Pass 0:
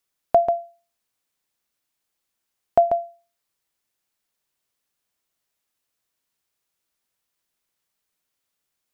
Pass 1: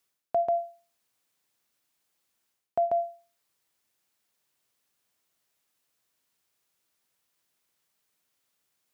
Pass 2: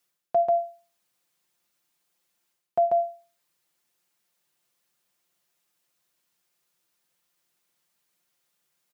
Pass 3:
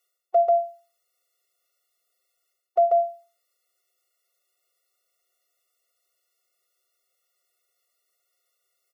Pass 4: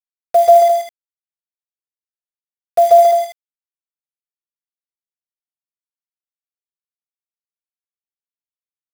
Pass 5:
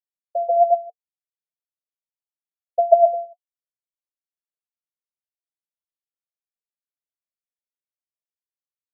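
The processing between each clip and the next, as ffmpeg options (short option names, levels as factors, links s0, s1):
-af "highpass=72,areverse,acompressor=threshold=0.0447:ratio=6,areverse,volume=1.33"
-af "aecho=1:1:5.7:0.65"
-af "afftfilt=real='re*eq(mod(floor(b*sr/1024/370),2),1)':imag='im*eq(mod(floor(b*sr/1024/370),2),1)':win_size=1024:overlap=0.75,volume=1.41"
-filter_complex "[0:a]acrusher=bits=5:mix=0:aa=0.000001,asplit=2[s0][s1];[s1]aecho=0:1:134.1|209.9:0.631|0.447[s2];[s0][s2]amix=inputs=2:normalize=0,volume=2.37"
-af "aphaser=in_gain=1:out_gain=1:delay=3.9:decay=0.7:speed=1.1:type=sinusoidal,asuperpass=centerf=570:order=20:qfactor=2.1,volume=0.398"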